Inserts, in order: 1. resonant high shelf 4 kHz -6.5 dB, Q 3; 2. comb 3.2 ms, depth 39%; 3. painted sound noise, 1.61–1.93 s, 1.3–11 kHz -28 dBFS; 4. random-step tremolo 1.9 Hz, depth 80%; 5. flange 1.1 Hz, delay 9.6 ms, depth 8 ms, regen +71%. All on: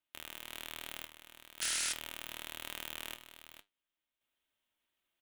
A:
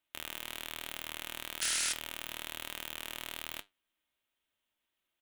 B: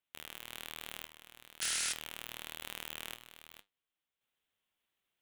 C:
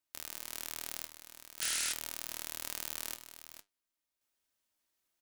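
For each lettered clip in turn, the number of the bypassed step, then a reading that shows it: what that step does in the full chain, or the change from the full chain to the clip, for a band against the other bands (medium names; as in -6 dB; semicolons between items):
4, momentary loudness spread change -11 LU; 2, 125 Hz band +2.0 dB; 1, 8 kHz band +2.0 dB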